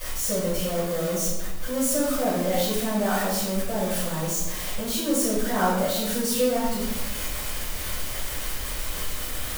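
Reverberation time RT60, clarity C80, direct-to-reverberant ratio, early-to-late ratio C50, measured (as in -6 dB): 1.1 s, 4.0 dB, -13.5 dB, 0.5 dB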